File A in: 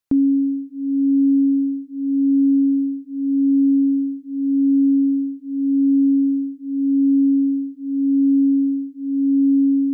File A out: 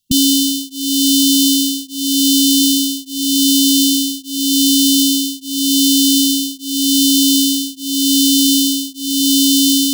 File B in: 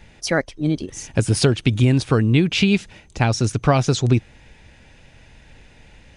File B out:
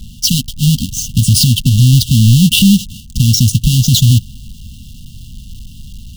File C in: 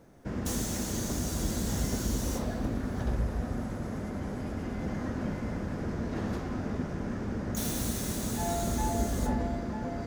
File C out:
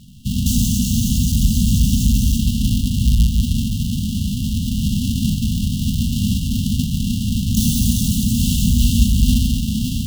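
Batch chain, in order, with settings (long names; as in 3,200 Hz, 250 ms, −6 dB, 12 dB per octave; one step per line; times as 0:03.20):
each half-wave held at its own peak
linear-phase brick-wall band-stop 260–2,700 Hz
boost into a limiter +12.5 dB
level −1 dB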